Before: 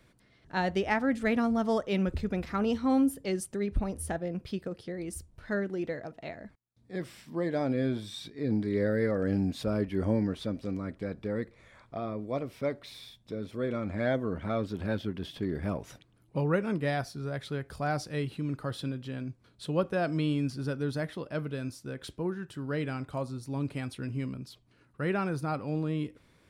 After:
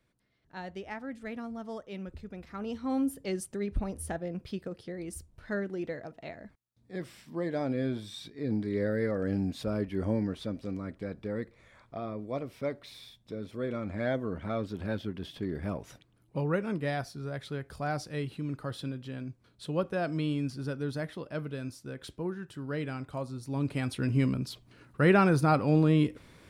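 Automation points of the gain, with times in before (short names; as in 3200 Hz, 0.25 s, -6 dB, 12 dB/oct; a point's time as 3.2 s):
2.35 s -12 dB
3.2 s -2 dB
23.27 s -2 dB
24.2 s +8 dB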